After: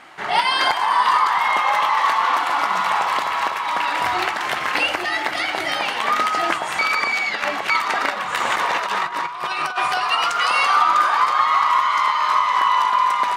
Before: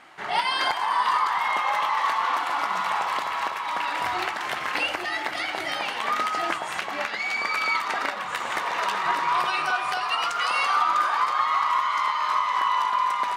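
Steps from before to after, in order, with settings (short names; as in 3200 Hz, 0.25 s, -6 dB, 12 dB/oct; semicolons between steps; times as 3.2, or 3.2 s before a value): 6.79–7.7 reverse; 8.37–9.93 negative-ratio compressor -28 dBFS, ratio -0.5; gain +6 dB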